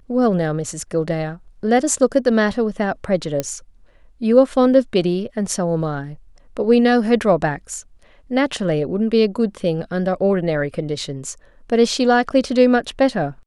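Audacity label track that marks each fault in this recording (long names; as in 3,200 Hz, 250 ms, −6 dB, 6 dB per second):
3.400000	3.400000	click −7 dBFS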